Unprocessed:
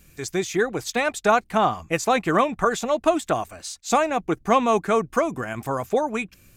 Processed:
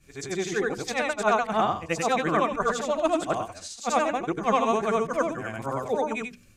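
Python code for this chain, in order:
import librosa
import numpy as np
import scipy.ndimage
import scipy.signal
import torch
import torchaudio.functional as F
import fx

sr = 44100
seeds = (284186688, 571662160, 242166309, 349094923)

y = fx.frame_reverse(x, sr, frame_ms=198.0)
y = scipy.signal.sosfilt(scipy.signal.butter(2, 9300.0, 'lowpass', fs=sr, output='sos'), y)
y = fx.hum_notches(y, sr, base_hz=60, count=8)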